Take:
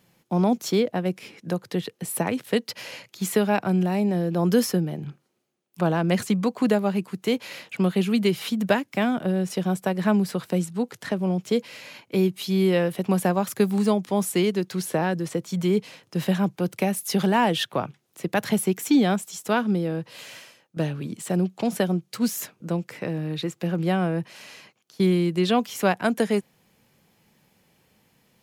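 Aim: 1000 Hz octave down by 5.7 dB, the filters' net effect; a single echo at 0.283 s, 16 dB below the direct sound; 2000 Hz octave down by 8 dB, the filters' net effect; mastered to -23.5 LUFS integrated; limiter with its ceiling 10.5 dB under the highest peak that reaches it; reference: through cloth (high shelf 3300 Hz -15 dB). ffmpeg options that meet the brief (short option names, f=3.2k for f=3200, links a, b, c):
-af "equalizer=f=1k:t=o:g=-6,equalizer=f=2k:t=o:g=-3.5,alimiter=limit=-19.5dB:level=0:latency=1,highshelf=f=3.3k:g=-15,aecho=1:1:283:0.158,volume=6dB"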